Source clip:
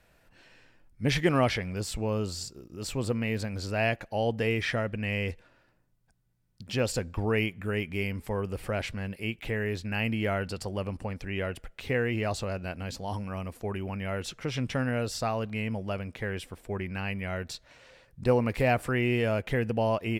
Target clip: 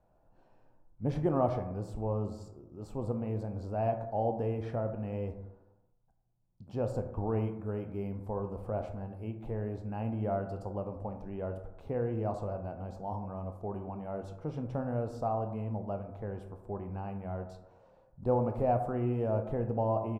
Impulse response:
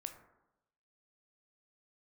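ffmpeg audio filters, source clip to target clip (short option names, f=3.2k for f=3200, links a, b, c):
-filter_complex "[0:a]firequalizer=gain_entry='entry(470,0);entry(800,5);entry(1900,-22);entry(6400,-19)':delay=0.05:min_phase=1[a];[1:a]atrim=start_sample=2205[b];[a][b]afir=irnorm=-1:irlink=0,volume=-1dB"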